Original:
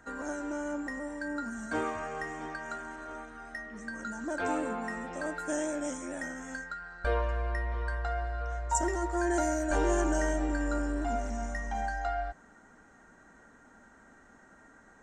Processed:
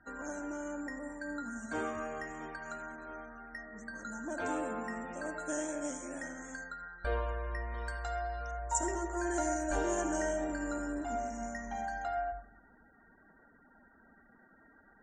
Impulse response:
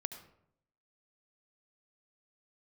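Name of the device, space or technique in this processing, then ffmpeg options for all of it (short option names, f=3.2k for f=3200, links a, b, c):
bathroom: -filter_complex "[1:a]atrim=start_sample=2205[a];[0:a][a]afir=irnorm=-1:irlink=0,asettb=1/sr,asplit=3[b][c][d];[b]atrim=end=7.744[e];[c]atrim=start=7.74:end=8.51,asetpts=PTS-STARTPTS,afade=t=in:d=0.004:c=qsin,afade=t=out:st=0.766:d=0.004:c=qsin,aemphasis=mode=production:type=75fm[f];[d]atrim=start=8.506[g];[e][f]acrossfade=d=0.004:c1=hsin:c2=qsin[h];[h][g]acrossfade=d=0.004:c1=qsin:c2=hsin,afftfilt=real='re*gte(hypot(re,im),0.002)':imag='im*gte(hypot(re,im),0.002)':win_size=1024:overlap=0.75,equalizer=f=6.9k:t=o:w=0.26:g=6,volume=-3dB"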